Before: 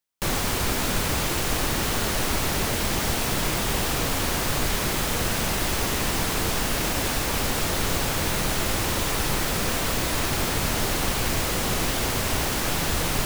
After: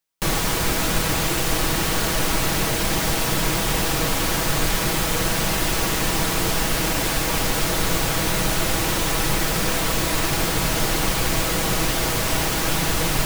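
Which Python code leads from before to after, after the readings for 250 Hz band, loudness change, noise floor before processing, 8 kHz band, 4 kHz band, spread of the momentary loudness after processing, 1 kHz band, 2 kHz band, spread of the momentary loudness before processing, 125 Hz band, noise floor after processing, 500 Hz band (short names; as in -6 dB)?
+3.5 dB, +3.0 dB, -26 dBFS, +3.5 dB, +3.0 dB, 0 LU, +3.0 dB, +3.5 dB, 0 LU, +3.0 dB, -23 dBFS, +3.0 dB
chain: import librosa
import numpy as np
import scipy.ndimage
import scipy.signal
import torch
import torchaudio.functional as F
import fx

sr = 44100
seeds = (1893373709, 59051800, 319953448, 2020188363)

y = x + 0.44 * np.pad(x, (int(6.2 * sr / 1000.0), 0))[:len(x)]
y = y * 10.0 ** (2.5 / 20.0)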